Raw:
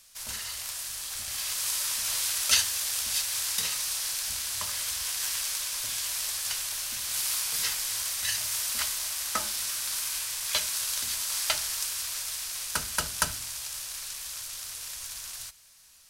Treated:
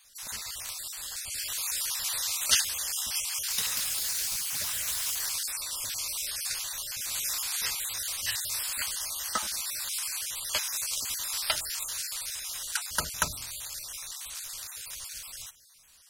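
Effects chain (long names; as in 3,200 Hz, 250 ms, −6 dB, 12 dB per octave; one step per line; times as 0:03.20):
time-frequency cells dropped at random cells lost 35%
0:03.22–0:05.67: delay with pitch and tempo change per echo 279 ms, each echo +5 semitones, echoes 3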